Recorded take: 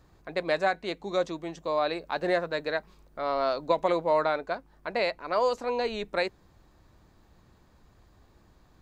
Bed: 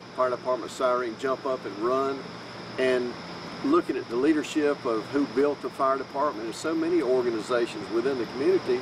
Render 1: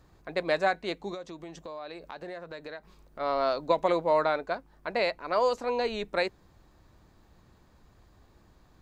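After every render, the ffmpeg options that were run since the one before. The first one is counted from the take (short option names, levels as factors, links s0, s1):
-filter_complex "[0:a]asplit=3[s0][s1][s2];[s0]afade=t=out:st=1.13:d=0.02[s3];[s1]acompressor=threshold=0.0112:ratio=4:attack=3.2:release=140:knee=1:detection=peak,afade=t=in:st=1.13:d=0.02,afade=t=out:st=3.19:d=0.02[s4];[s2]afade=t=in:st=3.19:d=0.02[s5];[s3][s4][s5]amix=inputs=3:normalize=0"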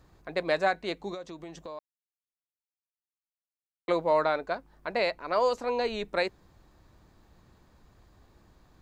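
-filter_complex "[0:a]asplit=3[s0][s1][s2];[s0]atrim=end=1.79,asetpts=PTS-STARTPTS,afade=t=out:st=1.786:d=0.004:c=hsin[s3];[s1]atrim=start=1.79:end=3.88,asetpts=PTS-STARTPTS,volume=0[s4];[s2]atrim=start=3.88,asetpts=PTS-STARTPTS,afade=t=in:d=0.004:c=hsin[s5];[s3][s4][s5]concat=n=3:v=0:a=1"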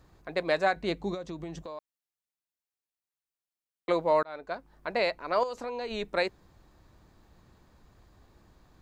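-filter_complex "[0:a]asettb=1/sr,asplit=3[s0][s1][s2];[s0]atrim=end=0.764[s3];[s1]atrim=start=0.76:end=1.63,asetpts=PTS-STARTPTS,afade=t=in:d=0.004:c=qsin,afade=t=out:st=0.866:d=0.004:c=qsin,equalizer=f=79:t=o:w=2.9:g=12.5[s4];[s2]atrim=start=1.626[s5];[s3][s4]acrossfade=d=0.004:c1=hsin:c2=qsin[s6];[s6][s5]acrossfade=d=0.004:c1=qsin:c2=hsin,asettb=1/sr,asplit=3[s7][s8][s9];[s7]atrim=end=5.434[s10];[s8]atrim=start=5.43:end=5.91,asetpts=PTS-STARTPTS,afade=t=in:d=0.004:c=qsin,afade=t=out:st=0.476:d=0.004:c=qsin,acompressor=threshold=0.0251:ratio=5:attack=3.2:release=140:knee=1:detection=peak[s11];[s9]atrim=start=5.906[s12];[s10][s11]acrossfade=d=0.004:c1=hsin:c2=qsin[s13];[s13][s12]acrossfade=d=0.004:c1=qsin:c2=hsin,asplit=2[s14][s15];[s14]atrim=end=4.23,asetpts=PTS-STARTPTS,afade=t=out:st=4.226:d=0.004:c=hsin[s16];[s15]atrim=start=4.23,asetpts=PTS-STARTPTS,afade=t=in:d=0.65:c=qsin[s17];[s16][s17]concat=n=2:v=0:a=1"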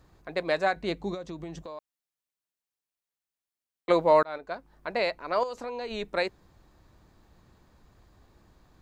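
-filter_complex "[0:a]asplit=3[s0][s1][s2];[s0]atrim=end=3.902[s3];[s1]atrim=start=3.898:end=4.382,asetpts=PTS-STARTPTS,volume=1.68[s4];[s2]atrim=start=4.378[s5];[s3][s4]acrossfade=d=0.004:c1=hsin:c2=hsin[s6];[s6][s5]acrossfade=d=0.004:c1=hsin:c2=hsin"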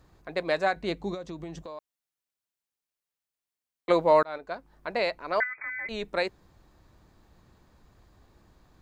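-filter_complex "[0:a]asettb=1/sr,asplit=3[s0][s1][s2];[s0]atrim=end=5.404[s3];[s1]atrim=start=5.4:end=5.89,asetpts=PTS-STARTPTS,afade=t=in:d=0.004:c=qsin,afade=t=out:st=0.486:d=0.004:c=qsin,lowpass=f=2100:t=q:w=0.5098,lowpass=f=2100:t=q:w=0.6013,lowpass=f=2100:t=q:w=0.9,lowpass=f=2100:t=q:w=2.563,afreqshift=-2500[s4];[s2]atrim=start=5.886[s5];[s3][s4]acrossfade=d=0.004:c1=hsin:c2=qsin[s6];[s6][s5]acrossfade=d=0.004:c1=qsin:c2=hsin"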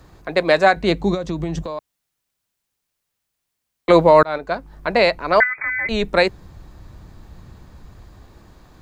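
-filter_complex "[0:a]acrossover=split=180[s0][s1];[s0]dynaudnorm=f=170:g=11:m=2.37[s2];[s2][s1]amix=inputs=2:normalize=0,alimiter=level_in=3.98:limit=0.891:release=50:level=0:latency=1"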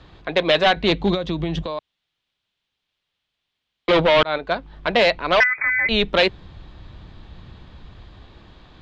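-af "volume=4.47,asoftclip=hard,volume=0.224,lowpass=f=3400:t=q:w=3.3"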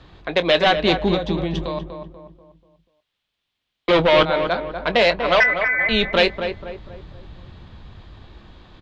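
-filter_complex "[0:a]asplit=2[s0][s1];[s1]adelay=23,volume=0.2[s2];[s0][s2]amix=inputs=2:normalize=0,asplit=2[s3][s4];[s4]adelay=243,lowpass=f=1600:p=1,volume=0.447,asplit=2[s5][s6];[s6]adelay=243,lowpass=f=1600:p=1,volume=0.43,asplit=2[s7][s8];[s8]adelay=243,lowpass=f=1600:p=1,volume=0.43,asplit=2[s9][s10];[s10]adelay=243,lowpass=f=1600:p=1,volume=0.43,asplit=2[s11][s12];[s12]adelay=243,lowpass=f=1600:p=1,volume=0.43[s13];[s3][s5][s7][s9][s11][s13]amix=inputs=6:normalize=0"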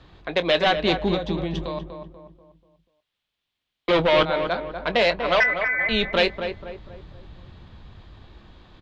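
-af "volume=0.668"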